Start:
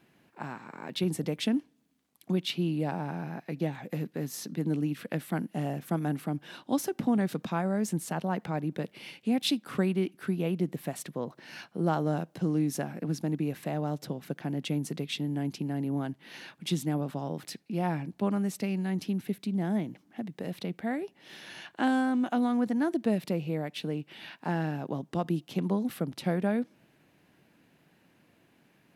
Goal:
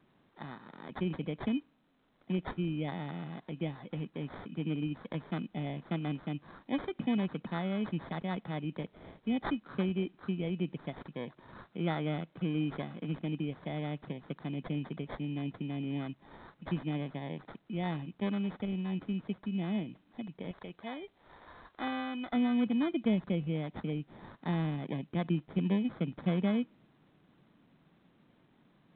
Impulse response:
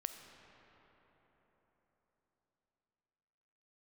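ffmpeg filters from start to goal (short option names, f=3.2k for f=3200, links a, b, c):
-af "acrusher=samples=16:mix=1:aa=0.000001,asetnsamples=n=441:p=0,asendcmd='20.51 equalizer g -6.5;22.33 equalizer g 6.5',equalizer=f=180:w=0.78:g=2.5,volume=-6.5dB" -ar 8000 -c:a pcm_alaw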